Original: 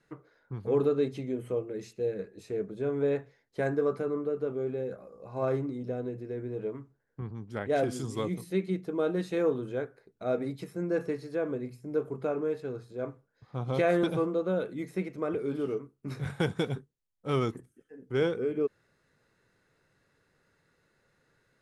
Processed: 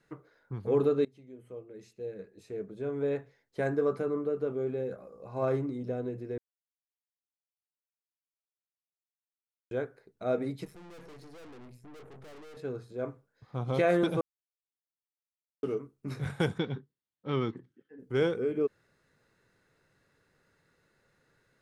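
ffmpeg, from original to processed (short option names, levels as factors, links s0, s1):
-filter_complex "[0:a]asettb=1/sr,asplit=3[s0][s1][s2];[s0]atrim=end=10.654[s3];[s1]atrim=start=10.65:end=12.57,asetpts=PTS-STARTPTS,afade=t=in:d=0.004:c=qsin,afade=t=out:st=1.916:d=0.004:c=qsin,aeval=exprs='(tanh(282*val(0)+0.55)-tanh(0.55))/282':c=same[s4];[s2]atrim=start=12.566[s5];[s3][s4]acrossfade=d=0.004:c1=hsin:c2=qsin[s6];[s6][s5]acrossfade=d=0.004:c1=qsin:c2=hsin,asettb=1/sr,asplit=3[s7][s8][s9];[s7]atrim=end=16.584[s10];[s8]atrim=start=16.58:end=17.99,asetpts=PTS-STARTPTS,afade=t=in:d=0.004:c=qsin,afade=t=out:st=1.406:d=0.004:c=qsin,highpass=120,equalizer=f=460:t=q:w=4:g=-4,equalizer=f=660:t=q:w=4:g=-8,equalizer=f=1300:t=q:w=4:g=-4,equalizer=f=2500:t=q:w=4:g=-5,lowpass=f=4200:w=0.5412,lowpass=f=4200:w=1.3066[s11];[s9]atrim=start=17.986[s12];[s10][s11]acrossfade=d=0.004:c1=hsin:c2=qsin[s13];[s13][s12]acrossfade=d=0.004:c1=qsin:c2=hsin,asplit=6[s14][s15][s16][s17][s18][s19];[s14]atrim=end=1.05,asetpts=PTS-STARTPTS,afade=t=out:st=1.046:d=0.004:c=hsin:silence=0.0707946[s20];[s15]atrim=start=1.05:end=6.38,asetpts=PTS-STARTPTS,afade=t=in:d=2.9:silence=0.0707946,afade=t=out:st=5.326:d=0.004:c=hsin[s21];[s16]atrim=start=6.38:end=9.71,asetpts=PTS-STARTPTS,volume=0[s22];[s17]atrim=start=9.71:end=14.21,asetpts=PTS-STARTPTS,afade=t=in:d=0.004:c=hsin,afade=t=out:st=4.496:d=0.004:c=hsin[s23];[s18]atrim=start=14.21:end=15.63,asetpts=PTS-STARTPTS,volume=0[s24];[s19]atrim=start=15.63,asetpts=PTS-STARTPTS,afade=t=in:d=0.004:c=hsin[s25];[s20][s21][s22][s23][s24][s25]concat=n=6:v=0:a=1"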